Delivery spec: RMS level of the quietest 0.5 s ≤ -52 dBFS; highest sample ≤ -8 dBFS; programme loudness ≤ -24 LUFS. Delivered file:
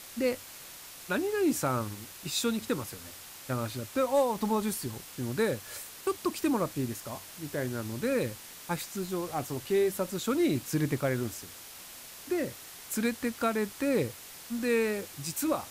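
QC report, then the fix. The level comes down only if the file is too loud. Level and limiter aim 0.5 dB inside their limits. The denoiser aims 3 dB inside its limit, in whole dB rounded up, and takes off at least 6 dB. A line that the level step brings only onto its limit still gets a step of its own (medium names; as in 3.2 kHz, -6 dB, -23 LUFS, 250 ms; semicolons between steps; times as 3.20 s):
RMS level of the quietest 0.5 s -47 dBFS: fail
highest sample -17.5 dBFS: pass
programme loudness -31.5 LUFS: pass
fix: noise reduction 8 dB, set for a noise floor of -47 dBFS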